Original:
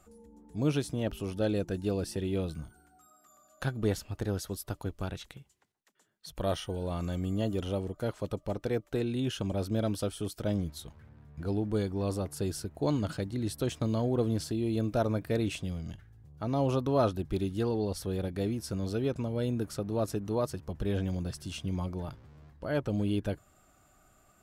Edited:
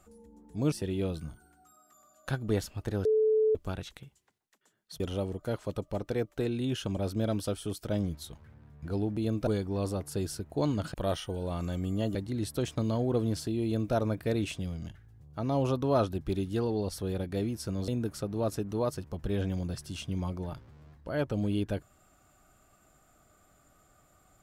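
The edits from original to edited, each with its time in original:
0.72–2.06 cut
4.39–4.89 bleep 435 Hz -21.5 dBFS
6.34–7.55 move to 13.19
14.68–14.98 copy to 11.72
18.92–19.44 cut

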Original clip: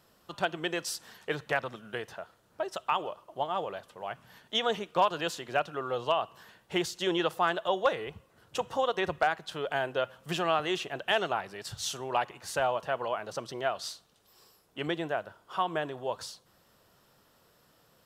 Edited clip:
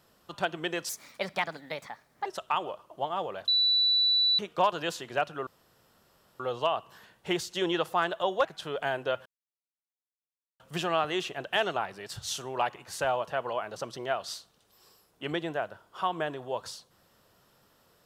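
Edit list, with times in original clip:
0.89–2.64 speed 128%
3.86–4.77 bleep 3960 Hz -21 dBFS
5.85 insert room tone 0.93 s
7.9–9.34 cut
10.15 insert silence 1.34 s

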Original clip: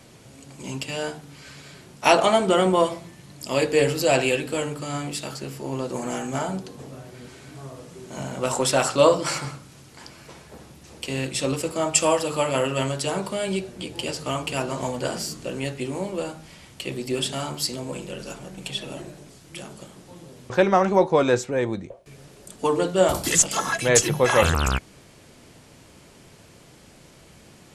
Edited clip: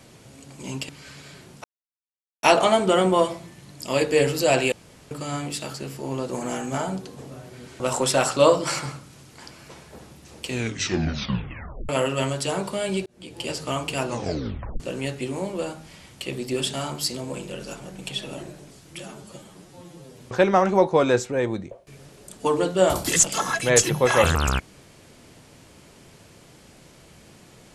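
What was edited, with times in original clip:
0.89–1.29 cut
2.04 insert silence 0.79 s
4.33–4.72 room tone
7.41–8.39 cut
11.04 tape stop 1.44 s
13.65–14.11 fade in
14.66 tape stop 0.73 s
19.59–20.39 stretch 1.5×

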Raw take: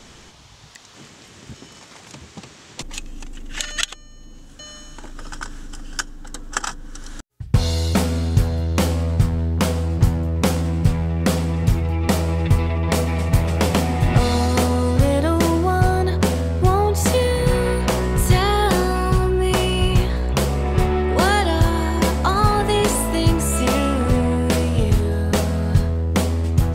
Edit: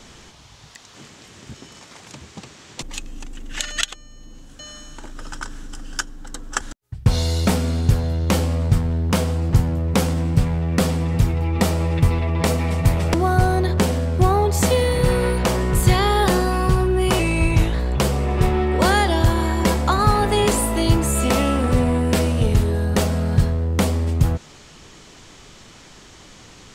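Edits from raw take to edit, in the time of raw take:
6.61–7.09 cut
13.62–15.57 cut
19.62–20.11 speed 89%

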